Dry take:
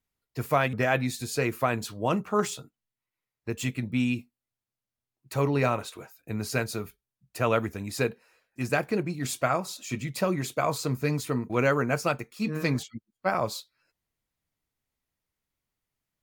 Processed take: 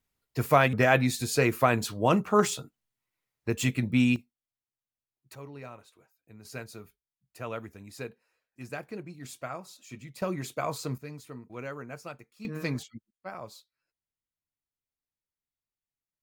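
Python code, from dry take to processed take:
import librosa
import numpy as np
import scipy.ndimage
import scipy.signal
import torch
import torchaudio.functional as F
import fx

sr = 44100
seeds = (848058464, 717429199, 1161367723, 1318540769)

y = fx.gain(x, sr, db=fx.steps((0.0, 3.0), (4.16, -9.0), (5.35, -19.0), (6.45, -12.0), (10.22, -5.0), (10.98, -15.0), (12.45, -5.0), (13.11, -14.0)))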